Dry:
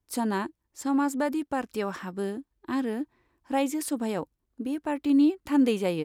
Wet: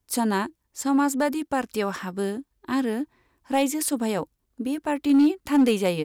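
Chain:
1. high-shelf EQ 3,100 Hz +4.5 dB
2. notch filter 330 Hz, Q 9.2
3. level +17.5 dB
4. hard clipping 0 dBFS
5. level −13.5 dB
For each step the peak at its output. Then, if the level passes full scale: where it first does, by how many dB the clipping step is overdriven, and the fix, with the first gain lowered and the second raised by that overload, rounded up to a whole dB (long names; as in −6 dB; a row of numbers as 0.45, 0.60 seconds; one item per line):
−14.0, −13.5, +4.0, 0.0, −13.5 dBFS
step 3, 4.0 dB
step 3 +13.5 dB, step 5 −9.5 dB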